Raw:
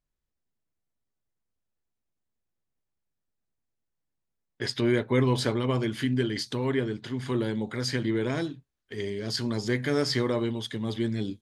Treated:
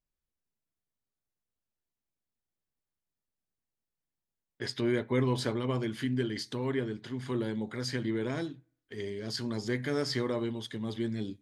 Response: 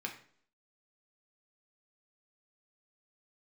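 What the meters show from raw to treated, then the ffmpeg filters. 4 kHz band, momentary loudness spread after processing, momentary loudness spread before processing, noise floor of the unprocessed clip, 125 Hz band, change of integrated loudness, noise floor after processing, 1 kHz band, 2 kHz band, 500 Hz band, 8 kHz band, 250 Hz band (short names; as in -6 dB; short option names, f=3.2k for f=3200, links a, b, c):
-5.5 dB, 9 LU, 9 LU, -83 dBFS, -5.5 dB, -5.0 dB, under -85 dBFS, -5.0 dB, -5.0 dB, -4.5 dB, -5.5 dB, -4.5 dB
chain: -filter_complex "[0:a]asplit=2[a][b];[1:a]atrim=start_sample=2205,lowpass=f=3.2k:w=0.5412,lowpass=f=3.2k:w=1.3066[c];[b][c]afir=irnorm=-1:irlink=0,volume=-18dB[d];[a][d]amix=inputs=2:normalize=0,volume=-5.5dB"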